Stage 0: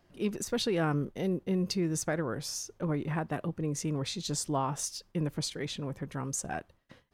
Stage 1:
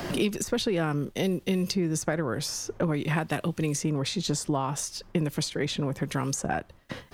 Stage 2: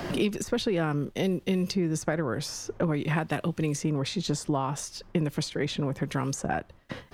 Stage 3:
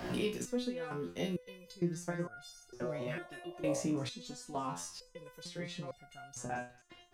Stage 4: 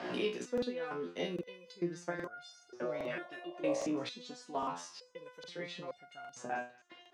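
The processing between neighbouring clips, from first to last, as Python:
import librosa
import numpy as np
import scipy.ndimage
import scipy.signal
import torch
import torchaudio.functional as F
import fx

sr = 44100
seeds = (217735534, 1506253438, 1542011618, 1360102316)

y1 = fx.band_squash(x, sr, depth_pct=100)
y1 = y1 * 10.0 ** (3.5 / 20.0)
y2 = fx.high_shelf(y1, sr, hz=5200.0, db=-6.5)
y3 = fx.spec_repair(y2, sr, seeds[0], start_s=2.85, length_s=0.93, low_hz=500.0, high_hz=1200.0, source='before')
y3 = fx.echo_wet_highpass(y3, sr, ms=224, feedback_pct=51, hz=1500.0, wet_db=-19.5)
y3 = fx.resonator_held(y3, sr, hz=2.2, low_hz=61.0, high_hz=710.0)
y3 = y3 * 10.0 ** (1.0 / 20.0)
y4 = fx.bandpass_edges(y3, sr, low_hz=290.0, high_hz=4500.0)
y4 = fx.buffer_crackle(y4, sr, first_s=0.53, period_s=0.81, block=2048, kind='repeat')
y4 = y4 * 10.0 ** (2.0 / 20.0)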